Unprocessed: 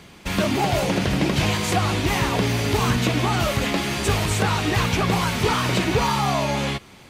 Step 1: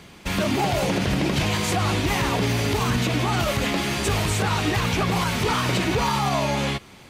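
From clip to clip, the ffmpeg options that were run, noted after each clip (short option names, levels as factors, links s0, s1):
-af "alimiter=limit=0.224:level=0:latency=1:release=42"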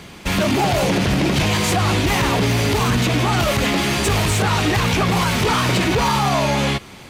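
-af "asoftclip=type=tanh:threshold=0.119,volume=2.24"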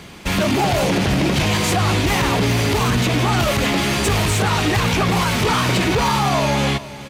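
-af "aecho=1:1:419:0.15"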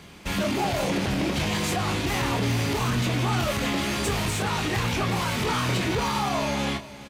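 -filter_complex "[0:a]asplit=2[s0][s1];[s1]adelay=25,volume=0.447[s2];[s0][s2]amix=inputs=2:normalize=0,volume=0.376"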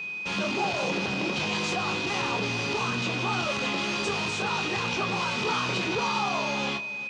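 -af "highpass=210,equalizer=f=280:t=q:w=4:g=-7,equalizer=f=640:t=q:w=4:g=-5,equalizer=f=1800:t=q:w=4:g=-7,lowpass=f=6200:w=0.5412,lowpass=f=6200:w=1.3066,bandreject=f=2200:w=15,aeval=exprs='val(0)+0.0251*sin(2*PI*2500*n/s)':c=same"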